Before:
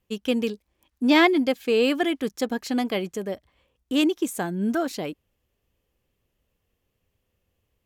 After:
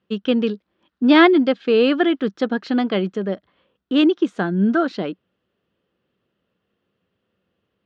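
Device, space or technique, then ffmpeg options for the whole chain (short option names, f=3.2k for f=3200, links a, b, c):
kitchen radio: -af "highpass=160,equalizer=f=190:t=q:w=4:g=7,equalizer=f=350:t=q:w=4:g=3,equalizer=f=850:t=q:w=4:g=-3,equalizer=f=1.4k:t=q:w=4:g=7,equalizer=f=2.3k:t=q:w=4:g=-6,lowpass=f=4k:w=0.5412,lowpass=f=4k:w=1.3066,volume=4.5dB"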